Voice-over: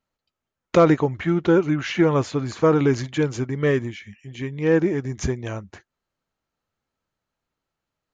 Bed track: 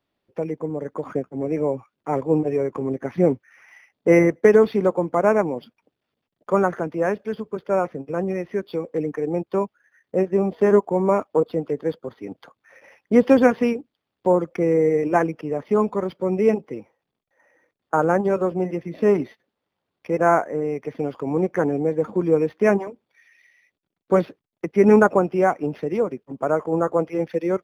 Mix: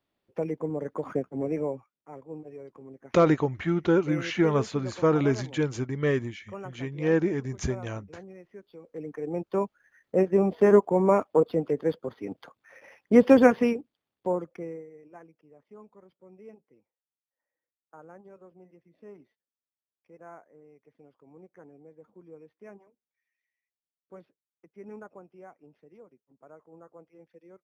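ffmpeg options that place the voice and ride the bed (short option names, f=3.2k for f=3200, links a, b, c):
-filter_complex "[0:a]adelay=2400,volume=-5dB[a];[1:a]volume=15.5dB,afade=t=out:st=1.4:d=0.61:silence=0.133352,afade=t=in:st=8.8:d=1.1:silence=0.112202,afade=t=out:st=13.45:d=1.41:silence=0.0398107[b];[a][b]amix=inputs=2:normalize=0"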